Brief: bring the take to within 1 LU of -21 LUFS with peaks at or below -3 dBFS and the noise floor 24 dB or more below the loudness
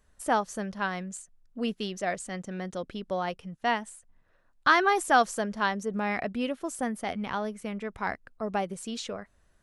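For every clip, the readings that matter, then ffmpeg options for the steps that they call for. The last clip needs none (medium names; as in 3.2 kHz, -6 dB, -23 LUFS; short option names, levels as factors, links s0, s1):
loudness -30.0 LUFS; peak level -8.5 dBFS; loudness target -21.0 LUFS
-> -af "volume=2.82,alimiter=limit=0.708:level=0:latency=1"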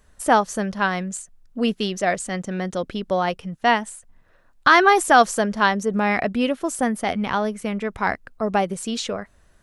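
loudness -21.5 LUFS; peak level -3.0 dBFS; noise floor -57 dBFS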